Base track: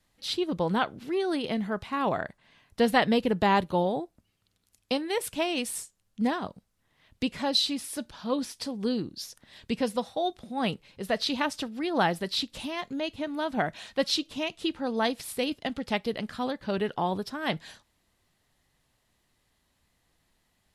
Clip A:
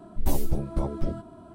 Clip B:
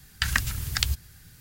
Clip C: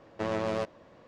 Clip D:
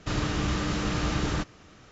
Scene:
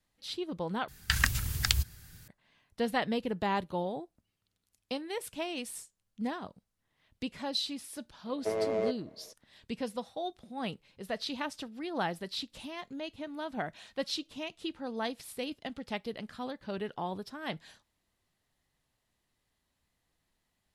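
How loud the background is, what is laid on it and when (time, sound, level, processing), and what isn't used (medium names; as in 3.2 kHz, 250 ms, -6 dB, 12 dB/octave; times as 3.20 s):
base track -8 dB
0.88 s: replace with B -2 dB
8.26 s: add C -10 dB + small resonant body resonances 440/630/2100 Hz, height 17 dB, ringing for 55 ms
not used: A, D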